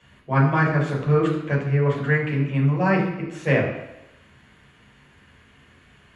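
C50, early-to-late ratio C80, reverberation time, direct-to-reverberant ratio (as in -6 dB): 5.0 dB, 7.5 dB, 0.90 s, -4.5 dB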